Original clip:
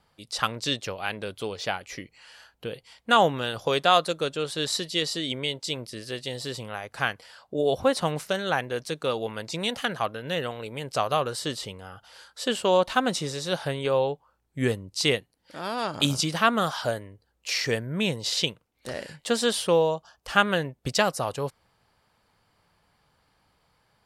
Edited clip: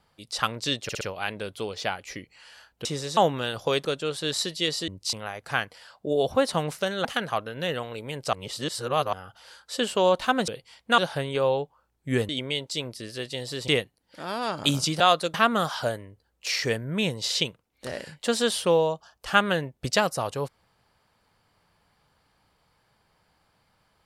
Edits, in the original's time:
0:00.83: stutter 0.06 s, 4 plays
0:02.67–0:03.17: swap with 0:13.16–0:13.48
0:03.85–0:04.19: move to 0:16.36
0:05.22–0:06.61: swap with 0:14.79–0:15.04
0:08.53–0:09.73: remove
0:11.01–0:11.81: reverse

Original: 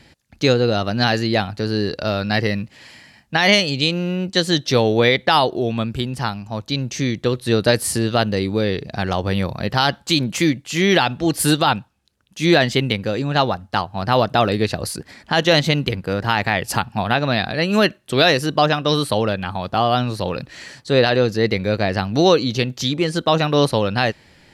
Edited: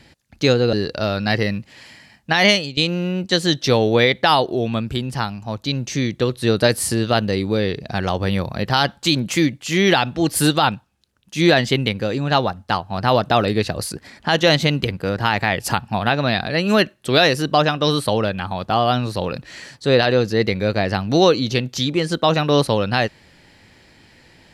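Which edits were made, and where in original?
0:00.73–0:01.77: remove
0:03.56–0:03.81: fade out, to −17 dB

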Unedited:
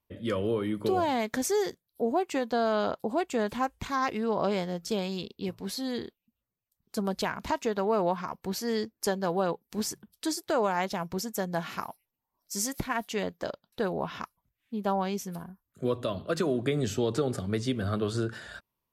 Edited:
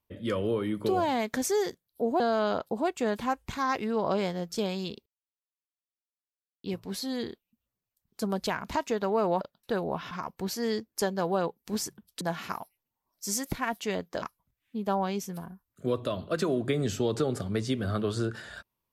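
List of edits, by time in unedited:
0:02.20–0:02.53: remove
0:05.39: splice in silence 1.58 s
0:10.26–0:11.49: remove
0:13.50–0:14.20: move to 0:08.16

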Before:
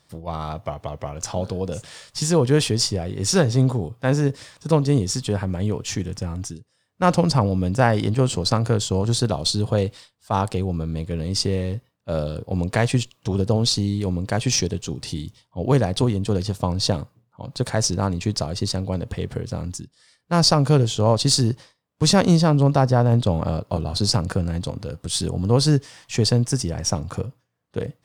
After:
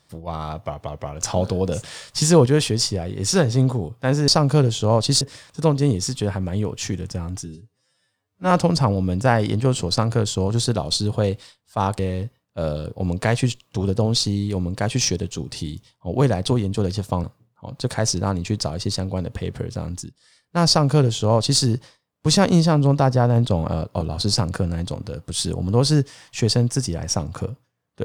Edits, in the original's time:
0:01.21–0:02.46: clip gain +4.5 dB
0:06.52–0:07.05: time-stretch 2×
0:10.53–0:11.50: remove
0:16.75–0:17.00: remove
0:20.44–0:21.37: duplicate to 0:04.28

